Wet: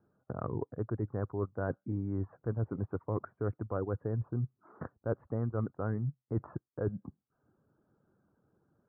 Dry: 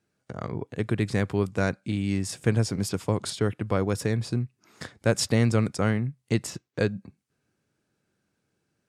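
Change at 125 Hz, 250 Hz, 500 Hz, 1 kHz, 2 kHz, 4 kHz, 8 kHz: -8.0 dB, -10.5 dB, -8.5 dB, -8.5 dB, -17.0 dB, under -40 dB, under -40 dB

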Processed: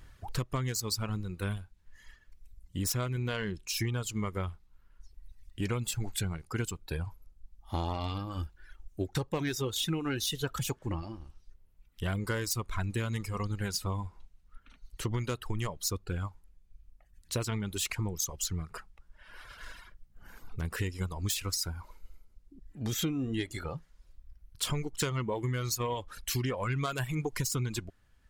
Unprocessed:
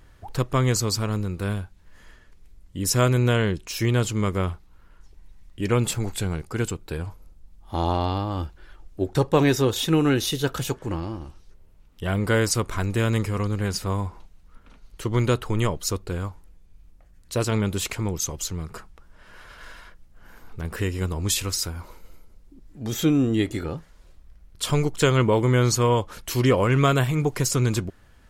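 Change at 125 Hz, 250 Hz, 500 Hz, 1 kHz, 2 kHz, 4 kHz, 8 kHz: -10.0, -11.5, -13.5, -11.0, -9.0, -6.5, -6.5 dB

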